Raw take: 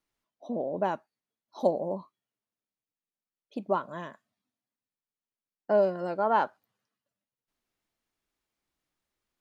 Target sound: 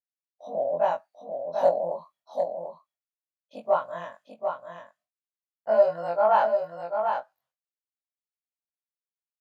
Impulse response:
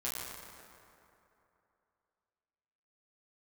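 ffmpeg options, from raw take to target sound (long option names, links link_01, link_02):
-filter_complex "[0:a]afftfilt=real='re':imag='-im':win_size=2048:overlap=0.75,lowshelf=frequency=470:width_type=q:width=3:gain=-8,acontrast=61,agate=range=-33dB:threshold=-58dB:ratio=3:detection=peak,asplit=2[link_01][link_02];[link_02]aecho=0:1:742:0.501[link_03];[link_01][link_03]amix=inputs=2:normalize=0,volume=-1dB"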